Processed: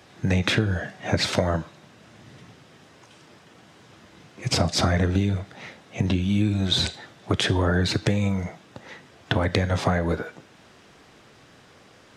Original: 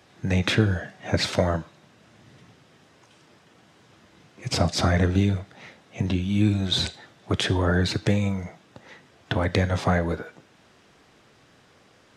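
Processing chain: compression 4:1, threshold -23 dBFS, peak gain reduction 8.5 dB; trim +4.5 dB

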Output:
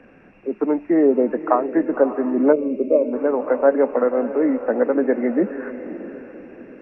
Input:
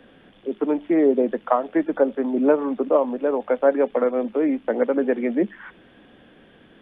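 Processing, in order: knee-point frequency compression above 1.7 kHz 1.5:1; echo that smears into a reverb 561 ms, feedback 44%, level -12 dB; time-frequency box 2.53–3.13 s, 660–2100 Hz -21 dB; trim +2 dB

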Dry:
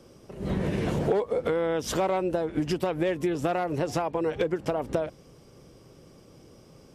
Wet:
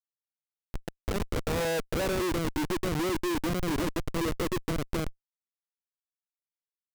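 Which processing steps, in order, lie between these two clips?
thinning echo 425 ms, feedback 43%, high-pass 310 Hz, level -18 dB; band-pass sweep 5.2 kHz -> 320 Hz, 0.03–2.32 s; Schmitt trigger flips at -33.5 dBFS; trim +6.5 dB

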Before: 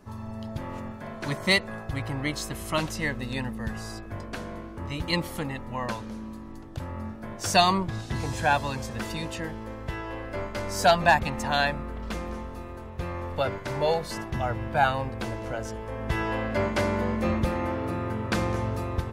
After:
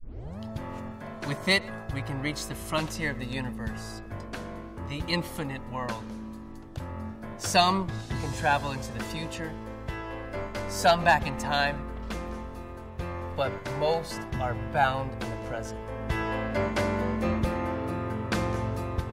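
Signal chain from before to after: tape start-up on the opening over 0.40 s; speakerphone echo 120 ms, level -23 dB; trim -1.5 dB

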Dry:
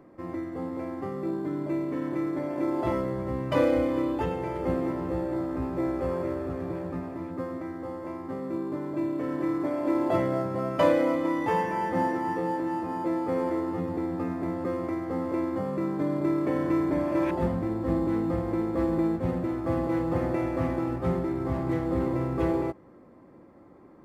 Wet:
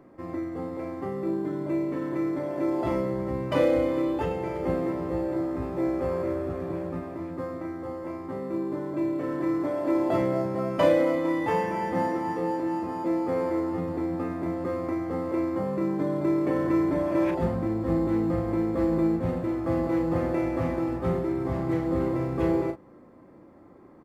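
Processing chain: doubling 36 ms -7 dB

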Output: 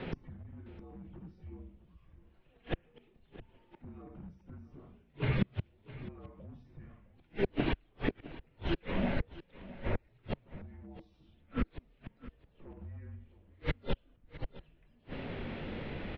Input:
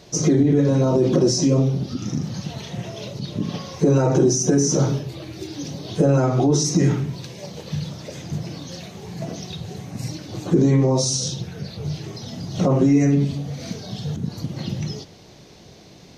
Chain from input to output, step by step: overload inside the chain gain 11.5 dB; flange 0.14 Hz, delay 5.4 ms, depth 4.9 ms, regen +86%; inverted gate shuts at -28 dBFS, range -39 dB; on a send: delay 661 ms -17 dB; on the sum: mistuned SSB -190 Hz 190–3000 Hz; trim +13.5 dB

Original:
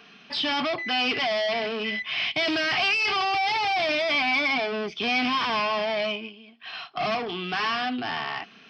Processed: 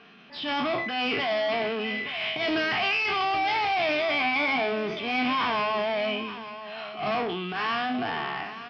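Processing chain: spectral sustain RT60 0.41 s; low-pass 4.5 kHz 12 dB/octave; treble shelf 2.6 kHz -7 dB; transient shaper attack -11 dB, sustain +5 dB; delay 880 ms -13 dB

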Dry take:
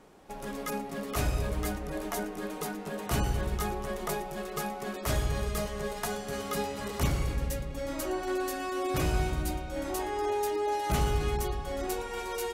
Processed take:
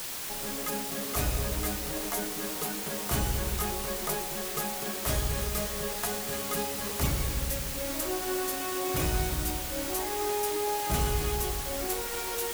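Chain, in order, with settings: treble shelf 8.6 kHz +9 dB; word length cut 6-bit, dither triangular; trim -1 dB

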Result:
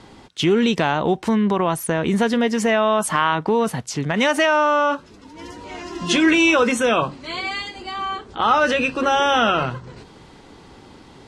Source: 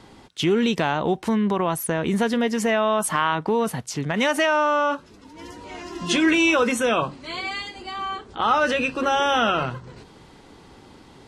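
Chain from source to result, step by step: low-pass 10 kHz 12 dB/octave; trim +3 dB

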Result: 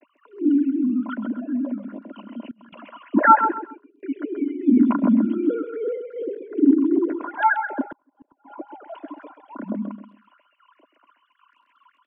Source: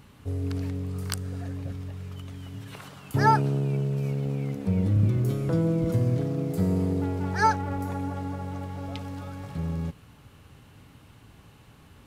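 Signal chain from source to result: formants replaced by sine waves; 3.51–4.03 s: gate -31 dBFS, range -33 dB; crackle 12 per s -54 dBFS; small resonant body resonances 280/600/1000/1400 Hz, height 17 dB, ringing for 30 ms; phase shifter stages 6, 2.6 Hz, lowest notch 450–1900 Hz; steep high-pass 210 Hz 72 dB/octave; distance through air 82 m; feedback delay 131 ms, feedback 26%, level -9 dB; 2.51–2.99 s: compressor with a negative ratio -43 dBFS, ratio -0.5; 7.86–8.52 s: inverted gate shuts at -23 dBFS, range -37 dB; trim -1 dB

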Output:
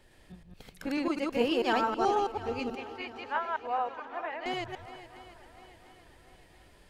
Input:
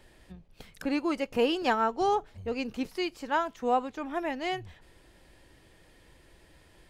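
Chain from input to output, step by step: chunks repeated in reverse 108 ms, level -0.5 dB; 2.75–4.46 s: three-band isolator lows -21 dB, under 560 Hz, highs -23 dB, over 3.2 kHz; shuffle delay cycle 700 ms, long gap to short 1.5:1, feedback 43%, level -15 dB; trim -3.5 dB

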